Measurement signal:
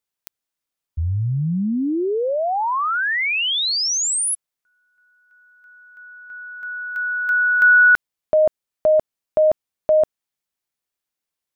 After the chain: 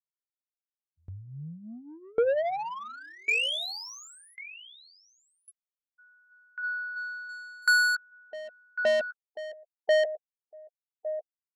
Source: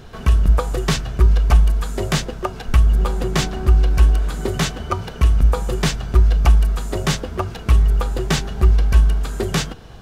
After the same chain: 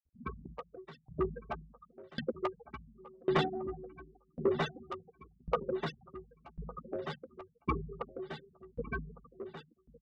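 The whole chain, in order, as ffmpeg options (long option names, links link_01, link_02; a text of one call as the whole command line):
ffmpeg -i in.wav -filter_complex "[0:a]asplit=2[link_01][link_02];[link_02]adelay=13,volume=-6dB[link_03];[link_01][link_03]amix=inputs=2:normalize=0,asplit=2[link_04][link_05];[link_05]adynamicsmooth=sensitivity=5.5:basefreq=2300,volume=-3dB[link_06];[link_04][link_06]amix=inputs=2:normalize=0,afftfilt=real='re*gte(hypot(re,im),0.251)':imag='im*gte(hypot(re,im),0.251)':win_size=1024:overlap=0.75,adynamicequalizer=threshold=0.0631:dfrequency=660:dqfactor=1:tfrequency=660:tqfactor=1:attack=5:release=100:ratio=0.4:range=2:mode=boostabove:tftype=bell,highpass=270,highshelf=frequency=4000:gain=-4.5,asplit=2[link_07][link_08];[link_08]aecho=0:1:1157:0.106[link_09];[link_07][link_09]amix=inputs=2:normalize=0,asoftclip=type=tanh:threshold=-13dB,aeval=exprs='val(0)*pow(10,-30*if(lt(mod(0.91*n/s,1),2*abs(0.91)/1000),1-mod(0.91*n/s,1)/(2*abs(0.91)/1000),(mod(0.91*n/s,1)-2*abs(0.91)/1000)/(1-2*abs(0.91)/1000))/20)':channel_layout=same,volume=-5dB" out.wav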